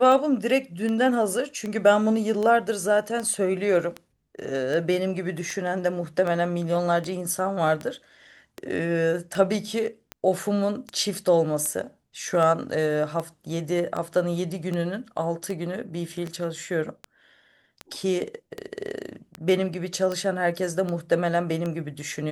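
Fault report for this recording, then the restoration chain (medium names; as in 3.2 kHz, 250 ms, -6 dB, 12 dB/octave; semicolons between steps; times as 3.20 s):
tick 78 rpm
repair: de-click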